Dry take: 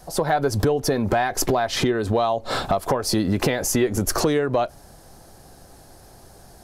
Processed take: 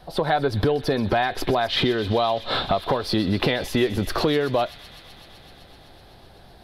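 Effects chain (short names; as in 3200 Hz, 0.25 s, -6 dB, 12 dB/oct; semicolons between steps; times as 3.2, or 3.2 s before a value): resonant high shelf 5000 Hz -11 dB, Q 3; on a send: thin delay 0.127 s, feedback 85%, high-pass 2600 Hz, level -13 dB; on the sum: gain -1 dB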